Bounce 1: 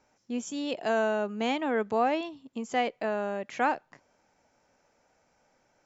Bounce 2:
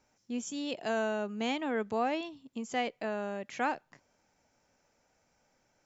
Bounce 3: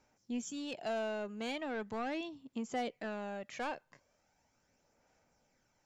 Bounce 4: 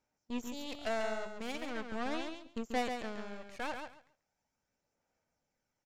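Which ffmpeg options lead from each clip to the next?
-af "equalizer=f=750:w=0.34:g=-5.5"
-af "asoftclip=type=tanh:threshold=-28dB,aphaser=in_gain=1:out_gain=1:delay=1.9:decay=0.34:speed=0.39:type=sinusoidal,volume=-3.5dB"
-filter_complex "[0:a]aeval=exprs='0.0376*(cos(1*acos(clip(val(0)/0.0376,-1,1)))-cos(1*PI/2))+0.0106*(cos(3*acos(clip(val(0)/0.0376,-1,1)))-cos(3*PI/2))+0.00376*(cos(4*acos(clip(val(0)/0.0376,-1,1)))-cos(4*PI/2))':c=same,asplit=2[a][b];[b]aecho=0:1:138|276|414:0.501|0.0902|0.0162[c];[a][c]amix=inputs=2:normalize=0,volume=5dB"

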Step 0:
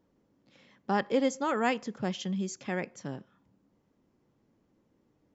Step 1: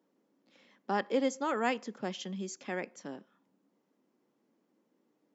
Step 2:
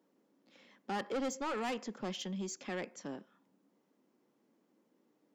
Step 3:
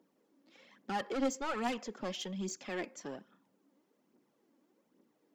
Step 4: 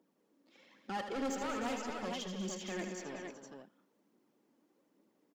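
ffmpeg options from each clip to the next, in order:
-af "highpass=f=210:w=0.5412,highpass=f=210:w=1.3066,volume=-2.5dB"
-af "asoftclip=type=tanh:threshold=-33dB,volume=1dB"
-af "aphaser=in_gain=1:out_gain=1:delay=3.8:decay=0.49:speed=1.2:type=triangular"
-af "aecho=1:1:78|190|223|309|377|464:0.398|0.282|0.266|0.266|0.237|0.501,volume=29.5dB,asoftclip=hard,volume=-29.5dB,volume=-3dB"

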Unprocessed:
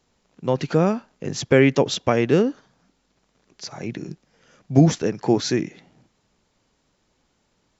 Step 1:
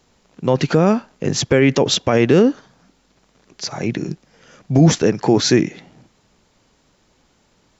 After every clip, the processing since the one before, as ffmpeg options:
-af "alimiter=limit=-12dB:level=0:latency=1:release=34,volume=8.5dB"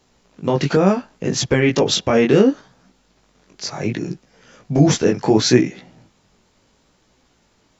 -af "flanger=delay=15.5:depth=6.1:speed=0.7,volume=2.5dB"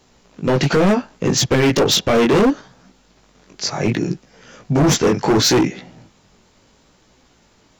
-af "asoftclip=type=hard:threshold=-16dB,volume=5dB"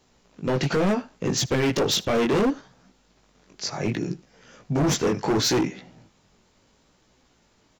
-af "aecho=1:1:78:0.075,volume=-7.5dB"

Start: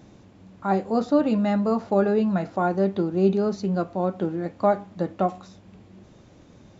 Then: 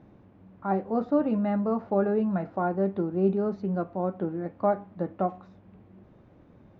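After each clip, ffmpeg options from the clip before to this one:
-af "lowpass=1.8k,volume=-4dB"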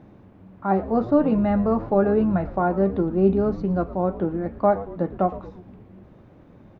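-filter_complex "[0:a]asplit=7[a][b][c][d][e][f][g];[b]adelay=114,afreqshift=-120,volume=-15.5dB[h];[c]adelay=228,afreqshift=-240,volume=-19.9dB[i];[d]adelay=342,afreqshift=-360,volume=-24.4dB[j];[e]adelay=456,afreqshift=-480,volume=-28.8dB[k];[f]adelay=570,afreqshift=-600,volume=-33.2dB[l];[g]adelay=684,afreqshift=-720,volume=-37.7dB[m];[a][h][i][j][k][l][m]amix=inputs=7:normalize=0,volume=5.5dB"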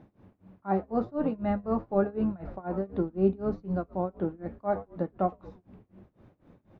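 -af "tremolo=f=4:d=0.94,volume=-5dB"

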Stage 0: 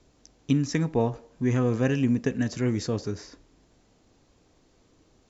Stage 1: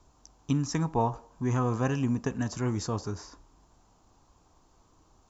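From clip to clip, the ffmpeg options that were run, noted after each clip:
-af "equalizer=f=125:t=o:w=1:g=-4,equalizer=f=250:t=o:w=1:g=-6,equalizer=f=500:t=o:w=1:g=-9,equalizer=f=1k:t=o:w=1:g=9,equalizer=f=2k:t=o:w=1:g=-11,equalizer=f=4k:t=o:w=1:g=-6,volume=3dB"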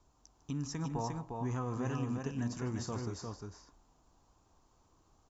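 -af "alimiter=limit=-21dB:level=0:latency=1:release=103,aecho=1:1:151|353:0.178|0.631,volume=-7.5dB"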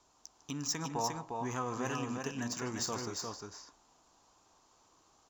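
-af "adynamicsmooth=sensitivity=7:basefreq=5.5k,aemphasis=mode=production:type=riaa,volume=5dB"

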